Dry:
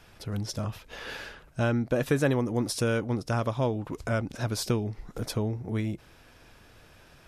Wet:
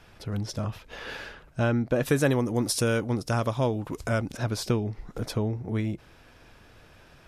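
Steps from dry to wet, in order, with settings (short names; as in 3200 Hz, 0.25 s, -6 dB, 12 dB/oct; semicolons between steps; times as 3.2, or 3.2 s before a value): high shelf 5800 Hz -6.5 dB, from 2.05 s +6 dB, from 4.37 s -6 dB; gain +1.5 dB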